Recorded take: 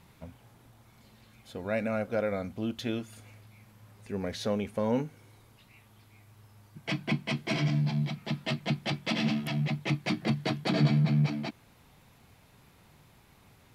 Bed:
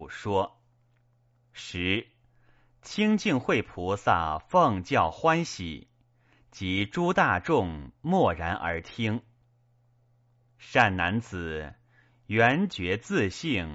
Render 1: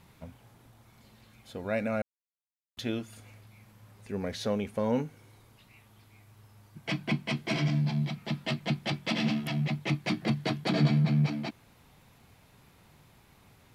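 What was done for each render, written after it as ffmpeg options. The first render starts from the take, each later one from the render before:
-filter_complex "[0:a]asplit=3[a][b][c];[a]atrim=end=2.02,asetpts=PTS-STARTPTS,afade=t=out:st=2.016:d=0.004:c=hsin[d];[b]atrim=start=2.02:end=2.77,asetpts=PTS-STARTPTS,volume=0[e];[c]atrim=start=2.77,asetpts=PTS-STARTPTS,afade=t=in:d=0.004:c=hsin[f];[d][e][f]concat=n=3:v=0:a=1"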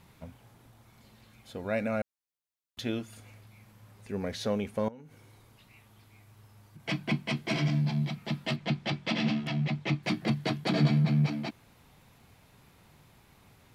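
-filter_complex "[0:a]asettb=1/sr,asplit=3[a][b][c];[a]atrim=end=4.884[d];[b]atrim=start=4.88:end=6.8,asetpts=PTS-STARTPTS,afade=t=in:d=0.004:c=qsin,afade=t=out:st=1.916:d=0.004:c=qsin,acompressor=threshold=-44dB:ratio=16:attack=3.2:release=140:knee=1:detection=peak[e];[c]atrim=start=6.796[f];[d][e]acrossfade=d=0.004:c1=hsin:c2=qsin[g];[g][f]acrossfade=d=0.004:c1=qsin:c2=hsin,asettb=1/sr,asplit=3[h][i][j];[h]atrim=end=8.564[k];[i]atrim=start=8.56:end=10.03,asetpts=PTS-STARTPTS,afade=t=in:d=0.004:c=qsin,afade=t=out:st=1.466:d=0.004:c=qsin,lowpass=6k[l];[j]atrim=start=10.026[m];[k][l]acrossfade=d=0.004:c1=hsin:c2=qsin[n];[n][m]acrossfade=d=0.004:c1=qsin:c2=hsin"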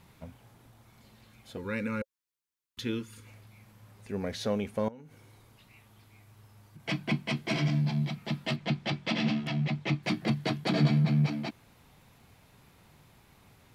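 -filter_complex "[0:a]asettb=1/sr,asplit=3[a][b][c];[a]atrim=end=1.574[d];[b]atrim=start=1.57:end=3.27,asetpts=PTS-STARTPTS,afade=t=in:d=0.004:c=qsin,afade=t=out:st=1.696:d=0.004:c=qsin,asuperstop=centerf=680:order=12:qfactor=2.1[e];[c]atrim=start=3.266[f];[d][e]acrossfade=d=0.004:c1=hsin:c2=qsin[g];[g][f]acrossfade=d=0.004:c1=qsin:c2=hsin"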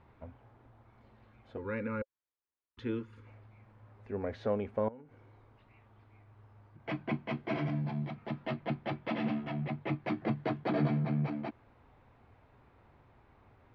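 -af "lowpass=1.5k,equalizer=f=170:t=o:w=0.58:g=-11.5"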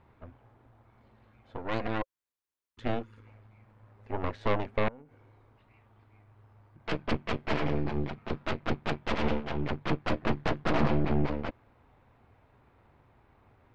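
-af "aeval=exprs='0.112*(cos(1*acos(clip(val(0)/0.112,-1,1)))-cos(1*PI/2))+0.0501*(cos(6*acos(clip(val(0)/0.112,-1,1)))-cos(6*PI/2))':c=same"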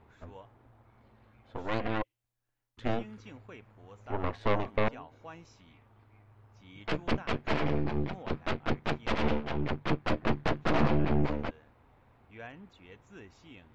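-filter_complex "[1:a]volume=-24.5dB[a];[0:a][a]amix=inputs=2:normalize=0"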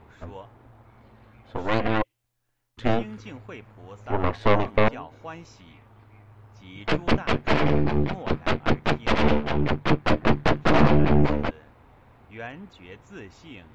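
-af "volume=8.5dB"

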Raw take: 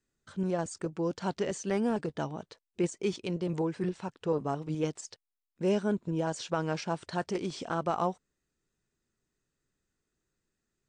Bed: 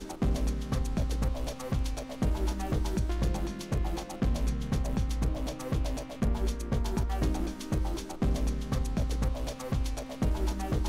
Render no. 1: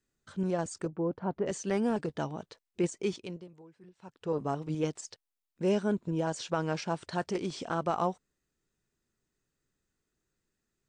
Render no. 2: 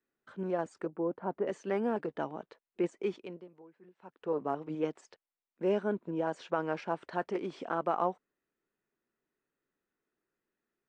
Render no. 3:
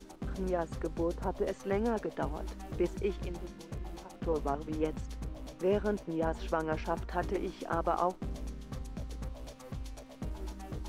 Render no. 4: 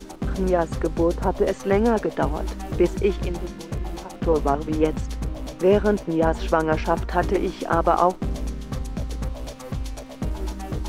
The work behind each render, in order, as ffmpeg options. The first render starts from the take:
-filter_complex "[0:a]asplit=3[a][b][c];[a]afade=t=out:st=0.87:d=0.02[d];[b]lowpass=1.1k,afade=t=in:st=0.87:d=0.02,afade=t=out:st=1.46:d=0.02[e];[c]afade=t=in:st=1.46:d=0.02[f];[d][e][f]amix=inputs=3:normalize=0,asplit=3[g][h][i];[g]atrim=end=3.5,asetpts=PTS-STARTPTS,afade=t=out:st=3.02:d=0.48:silence=0.0707946[j];[h]atrim=start=3.5:end=3.96,asetpts=PTS-STARTPTS,volume=-23dB[k];[i]atrim=start=3.96,asetpts=PTS-STARTPTS,afade=t=in:d=0.48:silence=0.0707946[l];[j][k][l]concat=n=3:v=0:a=1"
-filter_complex "[0:a]acrossover=split=220 2700:gain=0.126 1 0.112[a][b][c];[a][b][c]amix=inputs=3:normalize=0"
-filter_complex "[1:a]volume=-11dB[a];[0:a][a]amix=inputs=2:normalize=0"
-af "volume=12dB"

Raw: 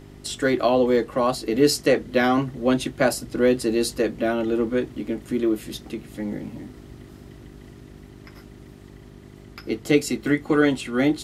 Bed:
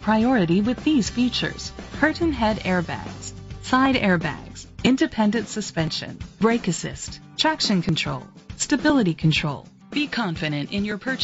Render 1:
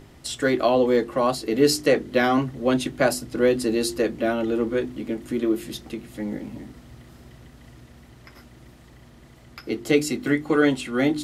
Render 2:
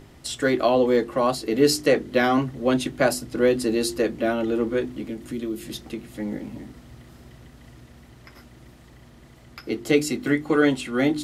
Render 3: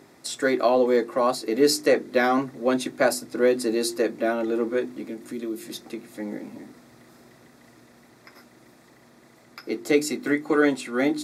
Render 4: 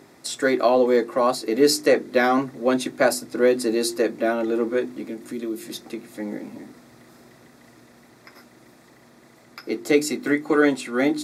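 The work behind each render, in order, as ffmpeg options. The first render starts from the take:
-af "bandreject=f=50:t=h:w=4,bandreject=f=100:t=h:w=4,bandreject=f=150:t=h:w=4,bandreject=f=200:t=h:w=4,bandreject=f=250:t=h:w=4,bandreject=f=300:t=h:w=4,bandreject=f=350:t=h:w=4,bandreject=f=400:t=h:w=4"
-filter_complex "[0:a]asettb=1/sr,asplit=3[a][b][c];[a]atrim=end=5.044[d];[b]atrim=start=5.04:end=5.69,asetpts=PTS-STARTPTS,afade=t=in:d=0.004:c=qsin,afade=t=out:st=0.646:d=0.004:c=qsin,acrossover=split=230|3000[e][f][g];[f]acompressor=threshold=-39dB:ratio=2:attack=3.2:release=140:knee=2.83:detection=peak[h];[e][h][g]amix=inputs=3:normalize=0[i];[c]atrim=start=5.686[j];[d][i]acrossfade=d=0.004:c1=hsin:c2=qsin[k];[k][j]acrossfade=d=0.004:c1=qsin:c2=hsin"
-af "highpass=250,equalizer=f=3k:w=7.9:g=-15"
-af "volume=2dB"

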